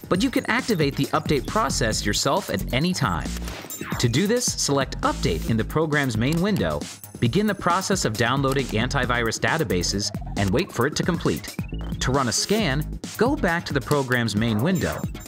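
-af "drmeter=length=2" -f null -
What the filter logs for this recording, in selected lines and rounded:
Channel 1: DR: 12.5
Overall DR: 12.5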